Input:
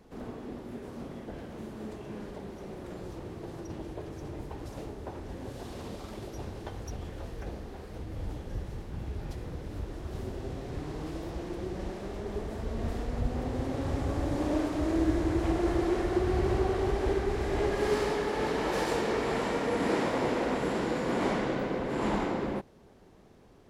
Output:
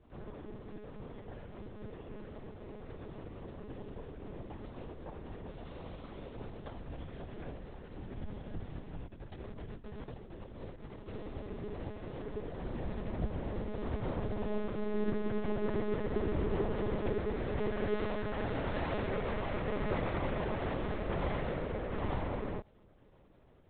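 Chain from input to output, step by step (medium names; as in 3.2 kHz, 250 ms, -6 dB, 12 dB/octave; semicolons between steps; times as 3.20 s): tracing distortion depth 0.046 ms; 9.02–11.09 s: compressor with a negative ratio -40 dBFS, ratio -0.5; monotone LPC vocoder at 8 kHz 210 Hz; trim -5 dB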